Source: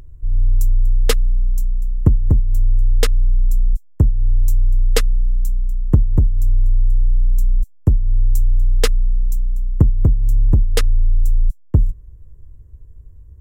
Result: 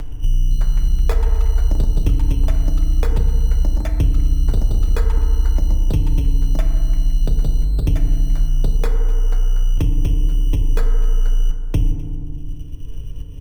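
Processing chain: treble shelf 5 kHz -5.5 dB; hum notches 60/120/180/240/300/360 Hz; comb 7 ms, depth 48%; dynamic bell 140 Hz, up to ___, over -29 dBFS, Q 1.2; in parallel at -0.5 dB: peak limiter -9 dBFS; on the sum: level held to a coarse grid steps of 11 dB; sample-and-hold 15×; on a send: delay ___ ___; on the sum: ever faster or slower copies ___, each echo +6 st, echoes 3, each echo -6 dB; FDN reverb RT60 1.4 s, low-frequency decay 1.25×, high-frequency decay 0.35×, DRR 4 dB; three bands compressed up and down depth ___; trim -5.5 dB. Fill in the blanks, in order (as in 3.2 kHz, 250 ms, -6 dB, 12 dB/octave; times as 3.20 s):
-6 dB, 251 ms, -22.5 dB, 340 ms, 70%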